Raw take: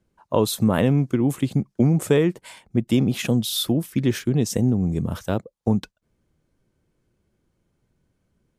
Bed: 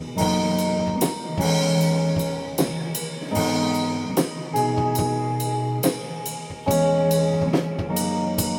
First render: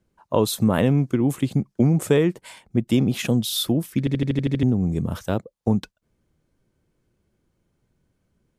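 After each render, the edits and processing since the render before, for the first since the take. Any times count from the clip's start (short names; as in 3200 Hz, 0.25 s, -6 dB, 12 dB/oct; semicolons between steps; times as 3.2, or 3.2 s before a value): 3.99 stutter in place 0.08 s, 8 plays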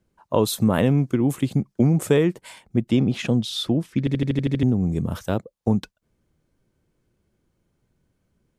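2.89–4.05 air absorption 79 m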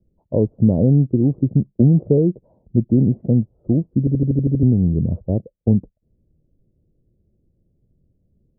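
steep low-pass 630 Hz 36 dB/oct; low shelf 190 Hz +9.5 dB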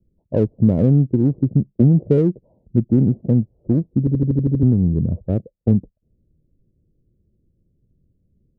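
Wiener smoothing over 25 samples; low-pass opened by the level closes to 560 Hz, open at -14 dBFS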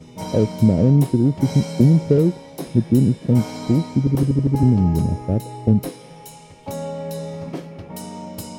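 add bed -9.5 dB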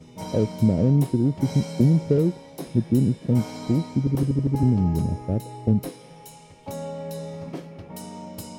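gain -4.5 dB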